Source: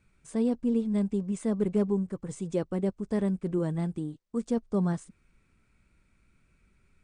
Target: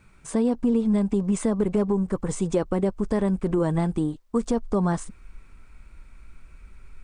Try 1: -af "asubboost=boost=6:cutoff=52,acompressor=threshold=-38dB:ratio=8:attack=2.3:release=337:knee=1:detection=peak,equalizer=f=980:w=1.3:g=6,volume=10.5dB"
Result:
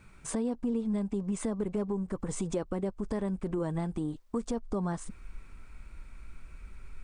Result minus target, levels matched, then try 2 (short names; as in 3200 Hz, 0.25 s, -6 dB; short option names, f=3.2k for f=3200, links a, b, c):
compressor: peak gain reduction +9 dB
-af "asubboost=boost=6:cutoff=52,acompressor=threshold=-27.5dB:ratio=8:attack=2.3:release=337:knee=1:detection=peak,equalizer=f=980:w=1.3:g=6,volume=10.5dB"